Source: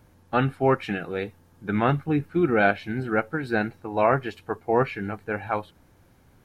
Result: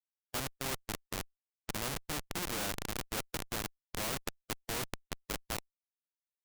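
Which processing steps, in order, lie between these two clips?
echo through a band-pass that steps 208 ms, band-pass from 200 Hz, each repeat 0.7 octaves, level −6 dB
low-pass that shuts in the quiet parts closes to 460 Hz, open at −17.5 dBFS
comparator with hysteresis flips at −21 dBFS
every bin compressed towards the loudest bin 2 to 1

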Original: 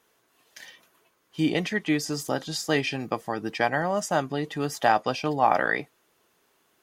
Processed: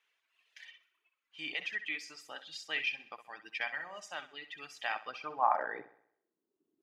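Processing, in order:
band-pass filter sweep 2,500 Hz → 310 Hz, 0:04.91–0:06.31
flutter between parallel walls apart 11 metres, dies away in 0.65 s
reverb reduction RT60 1.2 s
level −2 dB

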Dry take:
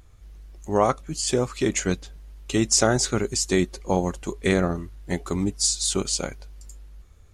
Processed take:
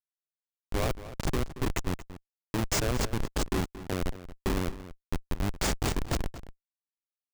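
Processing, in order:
comparator with hysteresis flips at −18 dBFS
slap from a distant wall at 39 metres, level −14 dB
level −1 dB

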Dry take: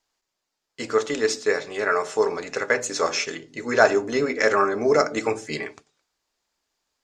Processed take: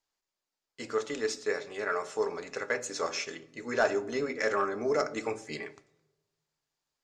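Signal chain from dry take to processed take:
soft clipping −5 dBFS, distortion −24 dB
on a send: convolution reverb RT60 1.1 s, pre-delay 3 ms, DRR 17 dB
on the sum: level −9 dB

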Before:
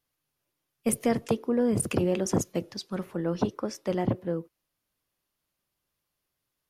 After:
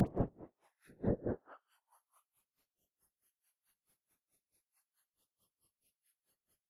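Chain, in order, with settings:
time-frequency cells dropped at random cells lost 30%
parametric band 11,000 Hz +13 dB 0.25 octaves
in parallel at +1 dB: downward compressor, threshold −35 dBFS, peak gain reduction 15 dB
on the sum: extreme stretch with random phases 5.9×, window 0.05 s, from 0:04.10
treble cut that deepens with the level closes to 1,200 Hz, closed at −27.5 dBFS
all-pass dispersion highs, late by 74 ms, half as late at 1,400 Hz
phases set to zero 157 Hz
on a send: echo with shifted repeats 105 ms, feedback 32%, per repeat +110 Hz, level −19 dB
on the sum: random phases in short frames
tremolo with a sine in dB 4.6 Hz, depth 30 dB

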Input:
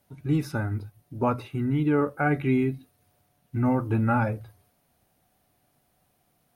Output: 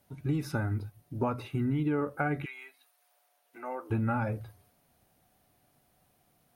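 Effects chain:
downward compressor 6 to 1, threshold −26 dBFS, peak gain reduction 8 dB
0:02.44–0:03.90: high-pass filter 960 Hz → 380 Hz 24 dB per octave

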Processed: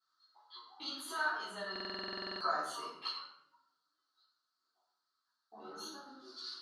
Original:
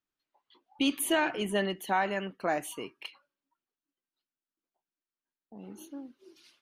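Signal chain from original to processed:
downward compressor 6 to 1, threshold −41 dBFS, peak gain reduction 17.5 dB
pair of resonant band-passes 2,400 Hz, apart 1.7 octaves
multi-voice chorus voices 2, 0.61 Hz, delay 12 ms, depth 1.2 ms
rectangular room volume 170 cubic metres, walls mixed, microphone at 3.7 metres
buffer that repeats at 0:01.71, samples 2,048, times 14
level +13.5 dB

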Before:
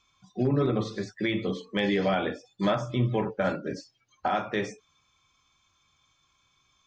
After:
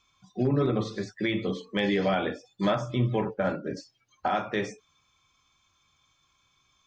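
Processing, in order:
0:03.34–0:03.77: high-shelf EQ 2,900 Hz −9 dB

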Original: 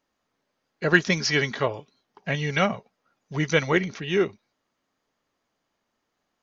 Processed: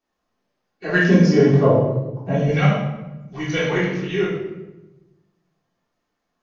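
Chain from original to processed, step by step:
spectral magnitudes quantised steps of 15 dB
0:01.06–0:02.48: octave-band graphic EQ 125/250/500/1,000/2,000/4,000 Hz +9/+11/+9/+6/−11/−8 dB
rectangular room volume 440 cubic metres, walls mixed, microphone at 3.5 metres
level −7.5 dB

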